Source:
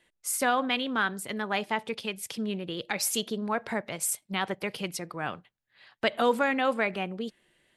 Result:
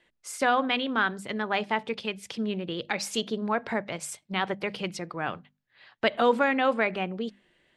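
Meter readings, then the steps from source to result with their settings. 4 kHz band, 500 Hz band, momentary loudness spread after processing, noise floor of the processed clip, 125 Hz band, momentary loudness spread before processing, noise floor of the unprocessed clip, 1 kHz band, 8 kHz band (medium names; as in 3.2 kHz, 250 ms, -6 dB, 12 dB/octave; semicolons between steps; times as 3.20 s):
+0.5 dB, +2.5 dB, 11 LU, -76 dBFS, +1.5 dB, 9 LU, -79 dBFS, +2.0 dB, -7.5 dB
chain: distance through air 88 m; hum notches 50/100/150/200/250 Hz; trim +2.5 dB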